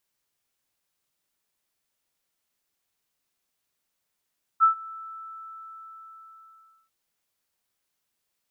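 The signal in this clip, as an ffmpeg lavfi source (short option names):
-f lavfi -i "aevalsrc='0.237*sin(2*PI*1320*t)':d=2.3:s=44100,afade=t=in:d=0.034,afade=t=out:st=0.034:d=0.109:silence=0.0668,afade=t=out:st=0.3:d=2"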